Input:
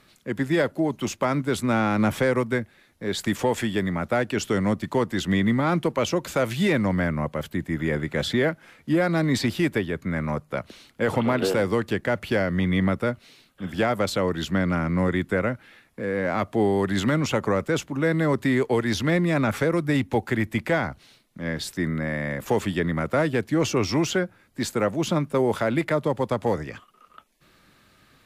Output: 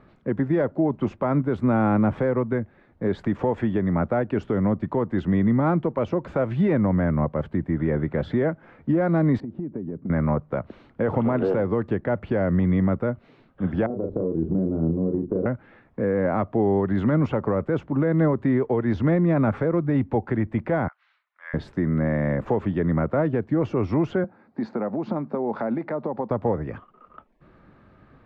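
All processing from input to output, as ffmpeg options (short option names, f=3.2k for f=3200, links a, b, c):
-filter_complex "[0:a]asettb=1/sr,asplit=3[a][b][c];[a]atrim=end=9.404[d];[b]atrim=start=9.4:end=10.1,asetpts=PTS-STARTPTS,afade=t=in:d=0.004:c=qsin,afade=t=out:st=0.696:d=0.004:c=qsin,bandpass=f=230:t=q:w=1.3,acompressor=threshold=-33dB:ratio=12:attack=3.2:release=140:knee=1:detection=peak[e];[c]atrim=start=10.096[f];[d][e]acrossfade=d=0.004:c1=hsin:c2=qsin[g];[g][f]acrossfade=d=0.004:c1=qsin:c2=hsin,asettb=1/sr,asplit=3[h][i][j];[h]atrim=end=13.864[k];[i]atrim=start=13.86:end=15.46,asetpts=PTS-STARTPTS,afade=t=in:d=0.004:c=qsin,afade=t=out:st=1.596:d=0.004:c=qsin,lowpass=f=390:t=q:w=2.7,acompressor=threshold=-28dB:ratio=6:attack=3.2:release=140:knee=1:detection=peak,asplit=2[l][m];[m]adelay=37,volume=-5dB[n];[l][n]amix=inputs=2:normalize=0,atrim=end_sample=70560[o];[j]atrim=start=15.456[p];[k][o]acrossfade=d=0.004:c1=hsin:c2=qsin[q];[q][p]acrossfade=d=0.004:c1=qsin:c2=hsin,asettb=1/sr,asplit=3[r][s][t];[r]atrim=end=20.884[u];[s]atrim=start=20.88:end=21.54,asetpts=PTS-STARTPTS,afade=t=in:d=0.004:c=qsin,afade=t=out:st=0.656:d=0.004:c=qsin,highpass=f=1.3k:w=0.5412,highpass=f=1.3k:w=1.3066,equalizer=f=11k:w=0.42:g=-12.5[v];[t]atrim=start=21.536[w];[u][v]acrossfade=d=0.004:c1=hsin:c2=qsin[x];[x][w]acrossfade=d=0.004:c1=qsin:c2=hsin,asettb=1/sr,asplit=3[y][z][aa];[y]atrim=end=24.244[ab];[z]atrim=start=24.24:end=26.31,asetpts=PTS-STARTPTS,afade=t=in:d=0.004:c=qsin,afade=t=out:st=2.066:d=0.004:c=qsin,acompressor=threshold=-30dB:ratio=6:attack=3.2:release=140:knee=1:detection=peak,highpass=210,equalizer=f=220:t=q:w=4:g=8,equalizer=f=800:t=q:w=4:g=6,equalizer=f=3.1k:t=q:w=4:g=-8,equalizer=f=4.4k:t=q:w=4:g=7,lowpass=f=5.7k:w=0.5412,lowpass=f=5.7k:w=1.3066[ac];[aa]atrim=start=26.306[ad];[ab][ac]acrossfade=d=0.004:c1=hsin:c2=qsin[ae];[ae][ad]acrossfade=d=0.004:c1=qsin:c2=hsin,lowpass=1.1k,equalizer=f=66:t=o:w=2.5:g=2,alimiter=limit=-20dB:level=0:latency=1:release=289,volume=6.5dB"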